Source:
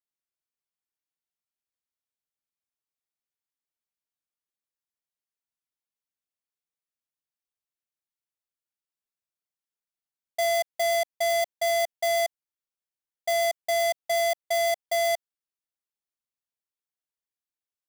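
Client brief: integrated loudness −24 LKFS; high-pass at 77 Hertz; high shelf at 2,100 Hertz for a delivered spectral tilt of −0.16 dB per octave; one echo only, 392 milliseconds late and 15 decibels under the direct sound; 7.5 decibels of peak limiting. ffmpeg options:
ffmpeg -i in.wav -af "highpass=77,highshelf=frequency=2100:gain=6,alimiter=limit=-21.5dB:level=0:latency=1,aecho=1:1:392:0.178,volume=7dB" out.wav

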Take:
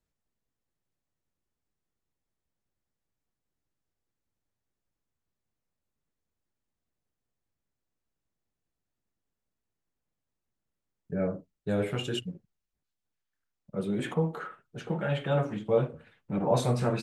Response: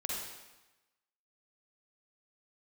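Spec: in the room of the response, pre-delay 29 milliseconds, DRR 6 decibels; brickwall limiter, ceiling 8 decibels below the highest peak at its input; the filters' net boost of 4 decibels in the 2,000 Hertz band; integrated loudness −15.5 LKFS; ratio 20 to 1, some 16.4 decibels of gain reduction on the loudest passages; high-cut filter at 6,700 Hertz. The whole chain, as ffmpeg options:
-filter_complex "[0:a]lowpass=6700,equalizer=frequency=2000:width_type=o:gain=5.5,acompressor=threshold=-35dB:ratio=20,alimiter=level_in=9dB:limit=-24dB:level=0:latency=1,volume=-9dB,asplit=2[link_01][link_02];[1:a]atrim=start_sample=2205,adelay=29[link_03];[link_02][link_03]afir=irnorm=-1:irlink=0,volume=-9dB[link_04];[link_01][link_04]amix=inputs=2:normalize=0,volume=27.5dB"

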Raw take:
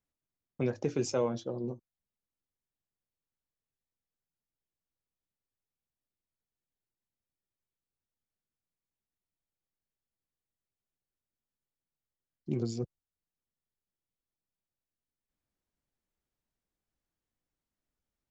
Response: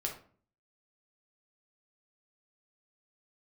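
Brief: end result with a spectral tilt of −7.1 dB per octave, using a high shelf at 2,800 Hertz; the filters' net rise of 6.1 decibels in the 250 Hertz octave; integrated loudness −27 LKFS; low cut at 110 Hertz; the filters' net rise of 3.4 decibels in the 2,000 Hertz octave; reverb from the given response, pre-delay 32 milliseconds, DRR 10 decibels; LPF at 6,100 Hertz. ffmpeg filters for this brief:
-filter_complex "[0:a]highpass=110,lowpass=6100,equalizer=frequency=250:width_type=o:gain=7.5,equalizer=frequency=2000:width_type=o:gain=6,highshelf=frequency=2800:gain=-3.5,asplit=2[link_01][link_02];[1:a]atrim=start_sample=2205,adelay=32[link_03];[link_02][link_03]afir=irnorm=-1:irlink=0,volume=-12dB[link_04];[link_01][link_04]amix=inputs=2:normalize=0,volume=4dB"

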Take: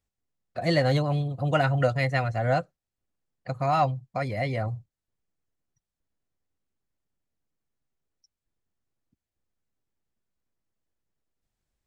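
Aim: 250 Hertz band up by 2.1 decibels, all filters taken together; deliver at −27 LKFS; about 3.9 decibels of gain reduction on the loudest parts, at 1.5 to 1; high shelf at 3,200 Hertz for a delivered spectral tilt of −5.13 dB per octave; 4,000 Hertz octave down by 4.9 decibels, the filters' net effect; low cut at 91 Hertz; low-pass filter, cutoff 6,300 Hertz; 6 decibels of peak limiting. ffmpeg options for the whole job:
ffmpeg -i in.wav -af "highpass=91,lowpass=6300,equalizer=frequency=250:width_type=o:gain=4,highshelf=frequency=3200:gain=4,equalizer=frequency=4000:width_type=o:gain=-8.5,acompressor=threshold=-28dB:ratio=1.5,volume=3dB,alimiter=limit=-16.5dB:level=0:latency=1" out.wav

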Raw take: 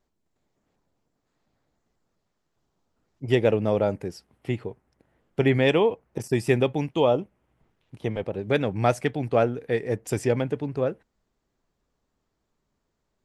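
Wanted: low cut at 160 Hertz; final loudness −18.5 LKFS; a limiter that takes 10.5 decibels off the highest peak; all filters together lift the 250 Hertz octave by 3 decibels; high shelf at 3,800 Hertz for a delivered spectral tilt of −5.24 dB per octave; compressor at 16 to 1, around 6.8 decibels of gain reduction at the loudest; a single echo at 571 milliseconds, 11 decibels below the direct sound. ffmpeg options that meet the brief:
ffmpeg -i in.wav -af "highpass=160,equalizer=frequency=250:width_type=o:gain=4.5,highshelf=frequency=3800:gain=7.5,acompressor=threshold=-20dB:ratio=16,alimiter=limit=-21.5dB:level=0:latency=1,aecho=1:1:571:0.282,volume=15dB" out.wav

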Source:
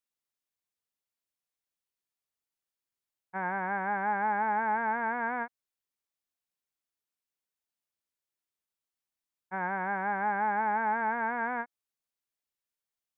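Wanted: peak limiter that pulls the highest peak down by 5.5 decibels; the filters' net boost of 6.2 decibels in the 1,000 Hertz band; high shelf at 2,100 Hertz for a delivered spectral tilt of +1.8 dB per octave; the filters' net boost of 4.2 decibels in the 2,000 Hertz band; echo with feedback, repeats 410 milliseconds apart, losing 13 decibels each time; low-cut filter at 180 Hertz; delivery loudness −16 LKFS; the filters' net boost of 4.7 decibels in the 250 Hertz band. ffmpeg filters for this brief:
ffmpeg -i in.wav -af "highpass=180,equalizer=frequency=250:width_type=o:gain=7.5,equalizer=frequency=1000:width_type=o:gain=7.5,equalizer=frequency=2000:width_type=o:gain=6,highshelf=frequency=2100:gain=-7.5,alimiter=limit=-20dB:level=0:latency=1,aecho=1:1:410|820|1230:0.224|0.0493|0.0108,volume=12.5dB" out.wav

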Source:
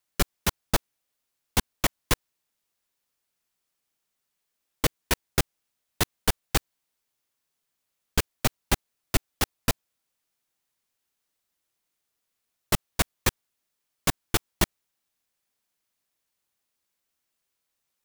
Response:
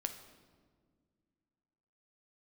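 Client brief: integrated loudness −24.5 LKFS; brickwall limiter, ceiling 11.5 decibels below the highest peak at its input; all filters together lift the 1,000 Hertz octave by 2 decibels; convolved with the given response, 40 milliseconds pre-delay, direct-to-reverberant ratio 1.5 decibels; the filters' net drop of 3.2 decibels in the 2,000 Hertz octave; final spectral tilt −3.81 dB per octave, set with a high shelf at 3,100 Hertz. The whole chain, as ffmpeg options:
-filter_complex "[0:a]equalizer=frequency=1000:width_type=o:gain=4,equalizer=frequency=2000:width_type=o:gain=-4,highshelf=frequency=3100:gain=-4,alimiter=limit=-19dB:level=0:latency=1,asplit=2[link_01][link_02];[1:a]atrim=start_sample=2205,adelay=40[link_03];[link_02][link_03]afir=irnorm=-1:irlink=0,volume=-1.5dB[link_04];[link_01][link_04]amix=inputs=2:normalize=0,volume=12dB"

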